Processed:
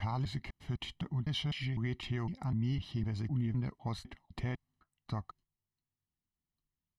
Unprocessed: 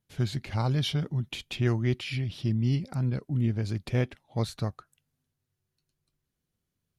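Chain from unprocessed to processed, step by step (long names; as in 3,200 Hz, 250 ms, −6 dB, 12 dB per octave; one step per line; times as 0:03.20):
slices reordered back to front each 253 ms, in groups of 3
low-pass filter 2,000 Hz 6 dB per octave
noise gate −59 dBFS, range −9 dB
parametric band 120 Hz −7 dB 0.98 octaves
comb filter 1 ms, depth 67%
dynamic equaliser 280 Hz, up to −4 dB, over −40 dBFS, Q 0.76
brickwall limiter −25 dBFS, peak gain reduction 7 dB
level −1.5 dB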